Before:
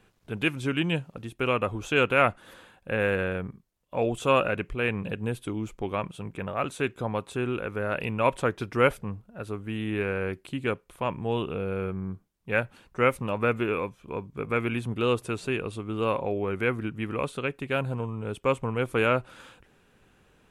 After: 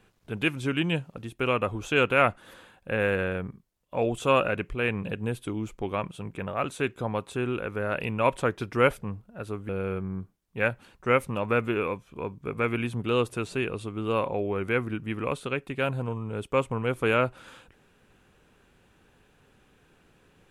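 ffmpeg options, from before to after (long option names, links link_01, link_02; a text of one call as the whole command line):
ffmpeg -i in.wav -filter_complex "[0:a]asplit=2[link_01][link_02];[link_01]atrim=end=9.692[link_03];[link_02]atrim=start=11.608[link_04];[link_03][link_04]acrossfade=duration=0.004:curve1=hsin:curve2=hsin" out.wav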